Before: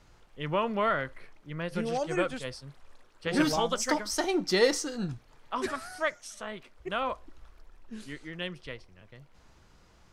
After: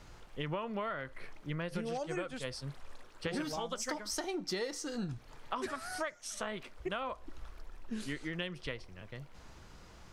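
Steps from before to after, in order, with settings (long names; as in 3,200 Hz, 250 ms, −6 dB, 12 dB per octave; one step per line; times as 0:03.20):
downward compressor 12 to 1, threshold −39 dBFS, peak gain reduction 21.5 dB
level +5 dB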